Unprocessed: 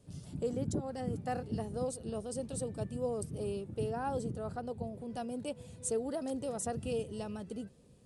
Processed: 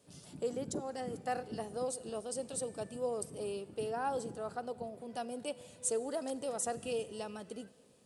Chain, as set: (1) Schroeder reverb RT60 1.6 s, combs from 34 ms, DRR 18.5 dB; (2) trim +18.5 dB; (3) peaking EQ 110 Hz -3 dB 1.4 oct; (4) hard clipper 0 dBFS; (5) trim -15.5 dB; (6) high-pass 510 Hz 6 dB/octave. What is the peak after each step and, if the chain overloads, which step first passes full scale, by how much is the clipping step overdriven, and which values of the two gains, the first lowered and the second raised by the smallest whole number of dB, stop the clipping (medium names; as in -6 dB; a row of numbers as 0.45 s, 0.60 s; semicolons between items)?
-23.5 dBFS, -5.0 dBFS, -5.5 dBFS, -5.5 dBFS, -21.0 dBFS, -21.5 dBFS; nothing clips